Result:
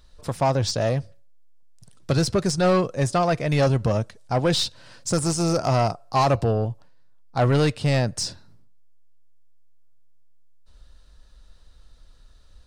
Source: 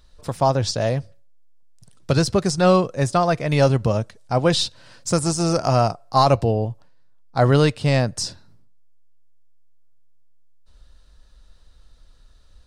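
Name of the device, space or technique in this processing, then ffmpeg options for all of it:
saturation between pre-emphasis and de-emphasis: -af "highshelf=frequency=6400:gain=8.5,asoftclip=type=tanh:threshold=-13.5dB,highshelf=frequency=6400:gain=-8.5"

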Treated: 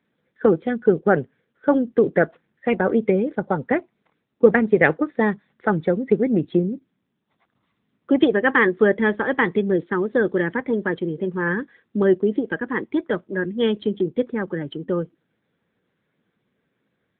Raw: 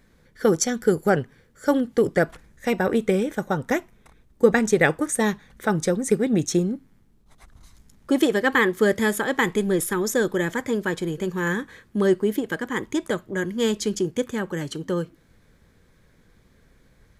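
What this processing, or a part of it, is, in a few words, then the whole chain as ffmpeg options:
mobile call with aggressive noise cancelling: -af "highpass=160,afftdn=noise_reduction=12:noise_floor=-32,volume=3dB" -ar 8000 -c:a libopencore_amrnb -b:a 10200

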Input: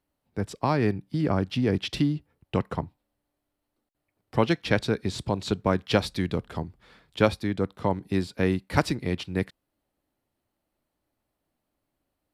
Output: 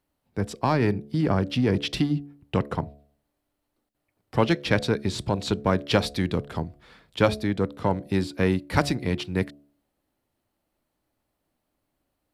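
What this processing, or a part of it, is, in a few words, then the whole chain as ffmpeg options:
parallel distortion: -filter_complex "[0:a]asplit=2[link_01][link_02];[link_02]asoftclip=type=hard:threshold=-21dB,volume=-8.5dB[link_03];[link_01][link_03]amix=inputs=2:normalize=0,bandreject=frequency=71.6:width_type=h:width=4,bandreject=frequency=143.2:width_type=h:width=4,bandreject=frequency=214.8:width_type=h:width=4,bandreject=frequency=286.4:width_type=h:width=4,bandreject=frequency=358:width_type=h:width=4,bandreject=frequency=429.6:width_type=h:width=4,bandreject=frequency=501.2:width_type=h:width=4,bandreject=frequency=572.8:width_type=h:width=4,bandreject=frequency=644.4:width_type=h:width=4,bandreject=frequency=716:width_type=h:width=4"

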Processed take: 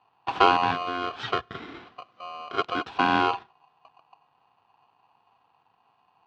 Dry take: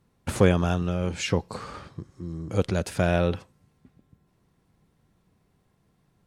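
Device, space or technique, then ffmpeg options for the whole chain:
ring modulator pedal into a guitar cabinet: -filter_complex "[0:a]asettb=1/sr,asplit=3[link_01][link_02][link_03];[link_01]atrim=end=0.714[link_04];[link_02]atrim=start=0.71:end=2.86,asetpts=PTS-STARTPTS,afade=type=in:duration=0.004:curve=qsin,afade=type=out:start_time=2.146:duration=0.004:curve=qsin,highpass=frequency=170:width=0.5412,highpass=frequency=170:width=1.3066[link_05];[link_03]atrim=start=2.856[link_06];[link_04][link_05]acrossfade=duration=0.004:curve1=hsin:curve2=qsin[link_07];[link_07][link_06]acrossfade=duration=0.004:curve1=qsin:curve2=hsin,aeval=exprs='val(0)*sgn(sin(2*PI*890*n/s))':channel_layout=same,highpass=76,equalizer=frequency=110:width_type=q:width=4:gain=5,equalizer=frequency=270:width_type=q:width=4:gain=3,equalizer=frequency=580:width_type=q:width=4:gain=-8,equalizer=frequency=860:width_type=q:width=4:gain=6,equalizer=frequency=2100:width_type=q:width=4:gain=-7,lowpass=frequency=3500:width=0.5412,lowpass=frequency=3500:width=1.3066"

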